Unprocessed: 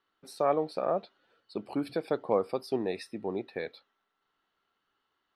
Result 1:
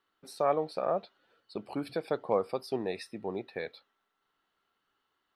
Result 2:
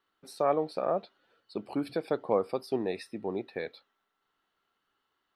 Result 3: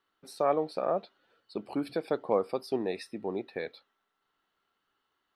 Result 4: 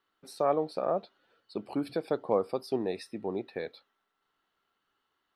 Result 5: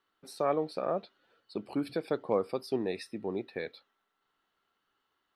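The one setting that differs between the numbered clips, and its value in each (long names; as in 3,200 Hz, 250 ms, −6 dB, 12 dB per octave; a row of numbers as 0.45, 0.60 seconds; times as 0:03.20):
dynamic equaliser, frequency: 290, 5,800, 100, 2,200, 760 Hertz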